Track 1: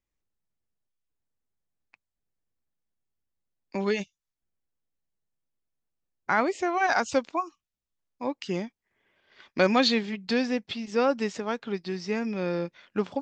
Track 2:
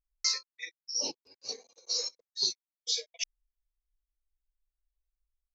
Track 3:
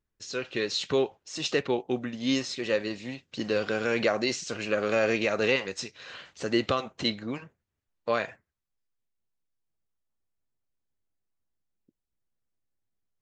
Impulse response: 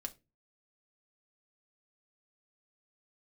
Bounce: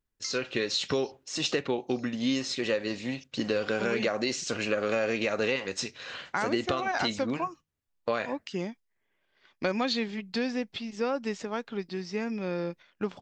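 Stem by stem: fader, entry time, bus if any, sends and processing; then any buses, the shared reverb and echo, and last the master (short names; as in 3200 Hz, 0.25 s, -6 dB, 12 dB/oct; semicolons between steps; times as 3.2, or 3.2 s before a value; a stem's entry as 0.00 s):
-2.5 dB, 0.05 s, no send, dry
+1.0 dB, 0.00 s, no send, compressor, threshold -32 dBFS, peak gain reduction 8.5 dB; auto duck -20 dB, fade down 1.95 s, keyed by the third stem
+1.0 dB, 0.00 s, send -7 dB, dry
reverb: on, RT60 0.25 s, pre-delay 4 ms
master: gate -46 dBFS, range -6 dB; compressor 4:1, threshold -25 dBFS, peak gain reduction 8 dB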